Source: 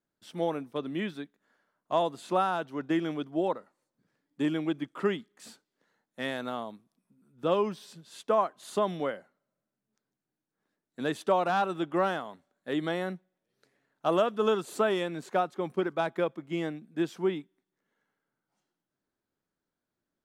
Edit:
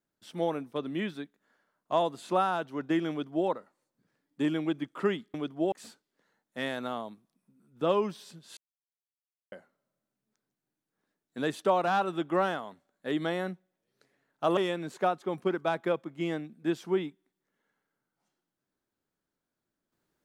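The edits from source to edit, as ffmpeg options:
-filter_complex "[0:a]asplit=6[a][b][c][d][e][f];[a]atrim=end=5.342[g];[b]atrim=start=3.098:end=3.482[h];[c]atrim=start=5.338:end=8.19,asetpts=PTS-STARTPTS,afade=t=out:st=2.848:d=0.004:c=hsin[i];[d]atrim=start=8.19:end=9.14,asetpts=PTS-STARTPTS,volume=0[j];[e]atrim=start=9.14:end=14.192,asetpts=PTS-STARTPTS,afade=t=in:d=0.004:c=hsin[k];[f]atrim=start=14.888[l];[g][h]acrossfade=d=0.004:c1=hsin:c2=hsin[m];[i][j][k]concat=n=3:v=0:a=1[n];[m][n]acrossfade=d=0.004:c1=hsin:c2=hsin[o];[o][l]acrossfade=d=0.004:c1=hsin:c2=hsin"

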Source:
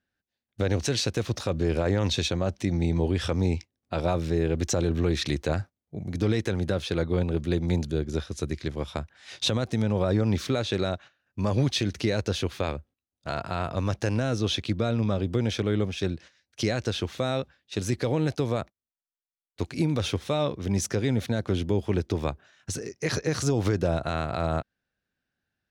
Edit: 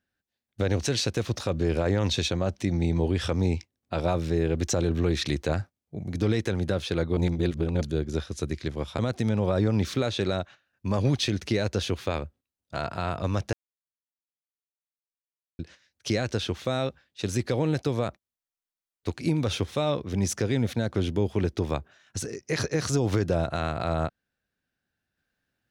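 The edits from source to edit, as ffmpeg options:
-filter_complex "[0:a]asplit=6[a][b][c][d][e][f];[a]atrim=end=7.172[g];[b]atrim=start=7.168:end=7.812,asetpts=PTS-STARTPTS,areverse[h];[c]atrim=start=7.808:end=8.992[i];[d]atrim=start=9.518:end=14.06,asetpts=PTS-STARTPTS,afade=t=out:st=4.538:d=0.004:c=hsin[j];[e]atrim=start=14.06:end=16.12,asetpts=PTS-STARTPTS,volume=0[k];[f]atrim=start=16.12,asetpts=PTS-STARTPTS,afade=t=in:d=0.004:c=hsin[l];[g][h]acrossfade=d=0.004:c1=hsin:c2=hsin[m];[m][i]acrossfade=d=0.004:c1=hsin:c2=hsin[n];[j][k][l]concat=n=3:v=0:a=1[o];[n][o]acrossfade=d=0.004:c1=hsin:c2=hsin"

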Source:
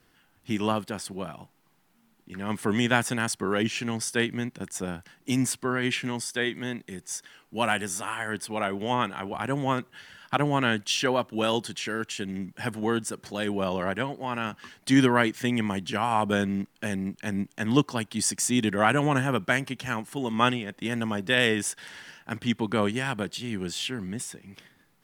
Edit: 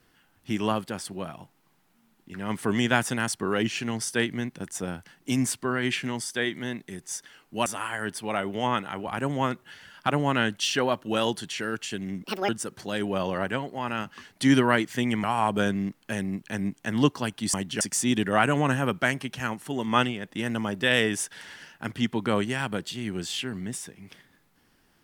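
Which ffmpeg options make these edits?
-filter_complex "[0:a]asplit=7[a][b][c][d][e][f][g];[a]atrim=end=7.662[h];[b]atrim=start=7.928:end=12.504[i];[c]atrim=start=12.5:end=12.95,asetpts=PTS-STARTPTS,asetrate=77175,aresample=44100[j];[d]atrim=start=12.946:end=15.702[k];[e]atrim=start=15.968:end=18.272[l];[f]atrim=start=15.698:end=15.972[m];[g]atrim=start=18.268[n];[h][i]acrossfade=d=0.004:c1=hsin:c2=hsin[o];[o][j]acrossfade=d=0.004:c1=hsin:c2=hsin[p];[p][k]acrossfade=d=0.004:c1=hsin:c2=hsin[q];[q][l]acrossfade=d=0.004:c1=hsin:c2=hsin[r];[r][m]acrossfade=d=0.004:c1=hsin:c2=hsin[s];[s][n]acrossfade=d=0.004:c1=hsin:c2=hsin"

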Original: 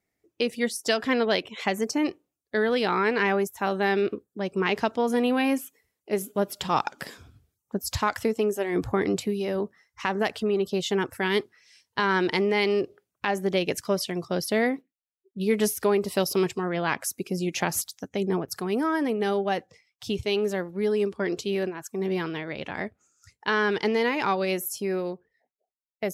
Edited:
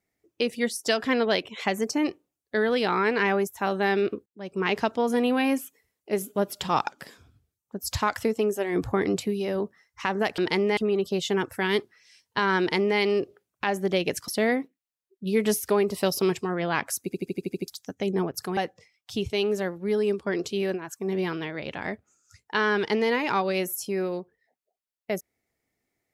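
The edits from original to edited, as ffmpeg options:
-filter_complex "[0:a]asplit=16[a][b][c][d][e][f][g][h][i][j][k][l][m][n][o][p];[a]atrim=end=4.26,asetpts=PTS-STARTPTS,afade=t=out:st=4.256:d=0.004:c=hsin[q];[b]atrim=start=4.26:end=6.922,asetpts=PTS-STARTPTS,afade=t=in:d=0.43[r];[c]atrim=start=6.918:end=7.822,asetpts=PTS-STARTPTS,volume=-6dB[s];[d]atrim=start=7.818:end=10.382[t];[e]atrim=start=12.198:end=12.592[u];[f]atrim=start=10.378:end=13.892[v];[g]atrim=start=14.418:end=17.262[w];[h]atrim=start=17.178:end=17.262[x];[i]atrim=start=17.178:end=17.262[y];[j]atrim=start=17.178:end=17.262[z];[k]atrim=start=17.178:end=17.262[aa];[l]atrim=start=17.178:end=17.262[ab];[m]atrim=start=17.178:end=17.262[ac];[n]atrim=start=17.178:end=17.262[ad];[o]atrim=start=17.818:end=18.712[ae];[p]atrim=start=19.498[af];[q][r]concat=n=2:v=0:a=1[ag];[ag][s]acrossfade=d=0.004:c1=hsin:c2=hsin[ah];[ah][t]acrossfade=d=0.004:c1=hsin:c2=hsin[ai];[ai][u]acrossfade=d=0.004:c1=hsin:c2=hsin[aj];[aj][v]acrossfade=d=0.004:c1=hsin:c2=hsin[ak];[ak][w]acrossfade=d=0.004:c1=hsin:c2=hsin[al];[al][x]acrossfade=d=0.004:c1=hsin:c2=hsin[am];[am][y]acrossfade=d=0.004:c1=hsin:c2=hsin[an];[an][z]acrossfade=d=0.004:c1=hsin:c2=hsin[ao];[ao][aa]acrossfade=d=0.004:c1=hsin:c2=hsin[ap];[ap][ab]acrossfade=d=0.004:c1=hsin:c2=hsin[aq];[aq][ac]acrossfade=d=0.004:c1=hsin:c2=hsin[ar];[ar][ad]acrossfade=d=0.004:c1=hsin:c2=hsin[as];[as][ae]acrossfade=d=0.004:c1=hsin:c2=hsin[at];[at][af]acrossfade=d=0.004:c1=hsin:c2=hsin"

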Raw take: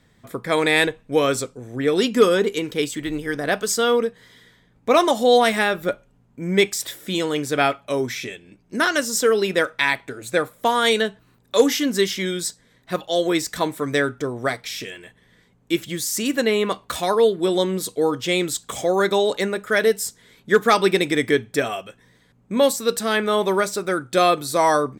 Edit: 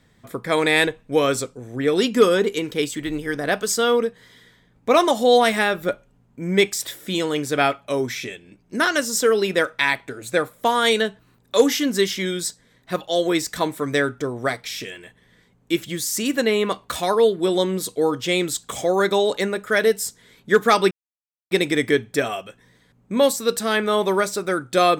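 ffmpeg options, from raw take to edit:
-filter_complex "[0:a]asplit=2[a][b];[a]atrim=end=20.91,asetpts=PTS-STARTPTS,afade=t=out:st=20.906:d=0.004:c=hsin,apad=pad_dur=0.6[c];[b]atrim=start=20.91,asetpts=PTS-STARTPTS,afade=t=in:d=0.004:c=hsin[d];[c][d]concat=n=2:v=0:a=1"

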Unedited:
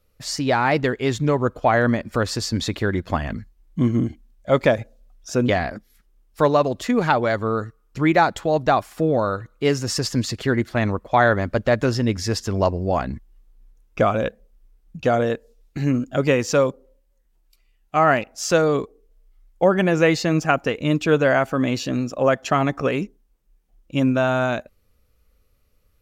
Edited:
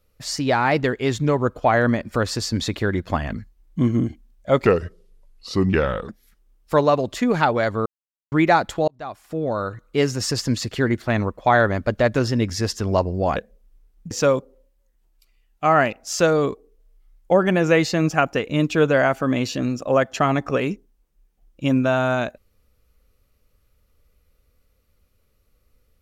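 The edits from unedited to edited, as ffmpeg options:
-filter_complex "[0:a]asplit=8[a][b][c][d][e][f][g][h];[a]atrim=end=4.664[i];[b]atrim=start=4.66:end=5.76,asetpts=PTS-STARTPTS,asetrate=33957,aresample=44100[j];[c]atrim=start=5.756:end=7.53,asetpts=PTS-STARTPTS,afade=t=out:st=1.77:d=0.004:c=hsin[k];[d]atrim=start=7.53:end=7.99,asetpts=PTS-STARTPTS,volume=0[l];[e]atrim=start=7.99:end=8.55,asetpts=PTS-STARTPTS,afade=t=in:d=0.004:c=hsin,afade=t=out:st=0.556:d=0.004:c=hsin[m];[f]atrim=start=8.55:end=13.032,asetpts=PTS-STARTPTS,afade=t=in:d=0.99[n];[g]atrim=start=14.248:end=15.002[o];[h]atrim=start=16.418[p];[i][j]acrossfade=d=0.004:c1=hsin:c2=hsin[q];[k][l][m][n]concat=n=4:v=0:a=1[r];[q][r]acrossfade=d=0.004:c1=hsin:c2=hsin[s];[s][o]acrossfade=d=0.004:c1=hsin:c2=hsin[t];[t][p]acrossfade=d=0.004:c1=hsin:c2=hsin"

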